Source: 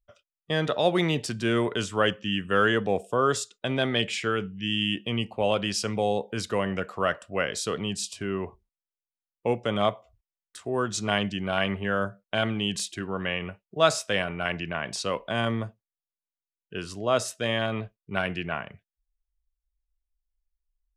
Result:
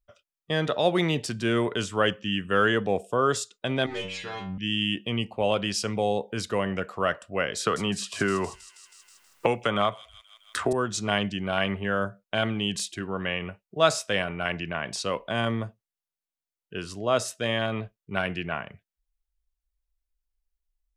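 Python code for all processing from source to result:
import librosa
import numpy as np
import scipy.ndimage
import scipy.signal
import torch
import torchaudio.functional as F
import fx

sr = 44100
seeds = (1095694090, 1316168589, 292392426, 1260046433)

y = fx.chain(x, sr, fx.leveller(passes=3),
    fx.air_absorb(metres=81.0),
    fx.stiff_resonator(f0_hz=92.0, decay_s=0.61, stiffness=0.002), at=(3.86, 4.58))
y = fx.chain(y, sr, fx.peak_eq(hz=1300.0, db=8.0, octaves=1.3),
    fx.echo_wet_highpass(ms=160, feedback_pct=42, hz=5100.0, wet_db=-8.0),
    fx.band_squash(depth_pct=100), at=(7.6, 10.73))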